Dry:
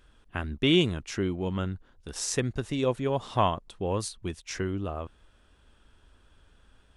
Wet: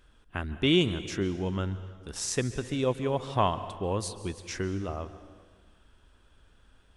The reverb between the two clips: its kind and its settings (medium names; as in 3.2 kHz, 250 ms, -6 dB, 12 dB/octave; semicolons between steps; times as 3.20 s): plate-style reverb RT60 1.6 s, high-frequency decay 0.9×, pre-delay 120 ms, DRR 13 dB; trim -1 dB